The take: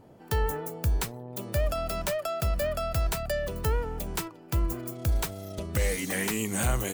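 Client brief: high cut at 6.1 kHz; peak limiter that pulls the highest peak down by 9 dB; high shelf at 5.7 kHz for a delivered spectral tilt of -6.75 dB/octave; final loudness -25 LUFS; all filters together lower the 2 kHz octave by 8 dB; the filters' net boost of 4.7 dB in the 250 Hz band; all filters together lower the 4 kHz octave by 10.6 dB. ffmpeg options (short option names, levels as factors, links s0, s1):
-af "lowpass=6100,equalizer=f=250:t=o:g=6.5,equalizer=f=2000:t=o:g=-7,equalizer=f=4000:t=o:g=-8,highshelf=f=5700:g=-7.5,volume=3.16,alimiter=limit=0.168:level=0:latency=1"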